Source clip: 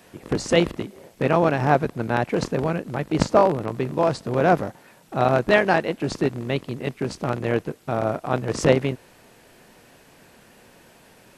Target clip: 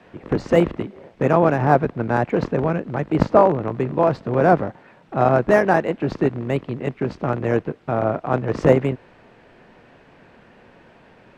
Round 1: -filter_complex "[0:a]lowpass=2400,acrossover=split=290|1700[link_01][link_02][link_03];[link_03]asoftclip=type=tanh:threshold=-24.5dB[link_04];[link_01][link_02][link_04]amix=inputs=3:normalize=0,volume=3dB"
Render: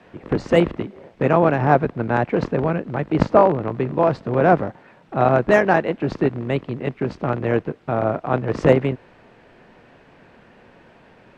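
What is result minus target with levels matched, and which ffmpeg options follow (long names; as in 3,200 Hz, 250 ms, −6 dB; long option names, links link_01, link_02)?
soft clipping: distortion −8 dB
-filter_complex "[0:a]lowpass=2400,acrossover=split=290|1700[link_01][link_02][link_03];[link_03]asoftclip=type=tanh:threshold=-34.5dB[link_04];[link_01][link_02][link_04]amix=inputs=3:normalize=0,volume=3dB"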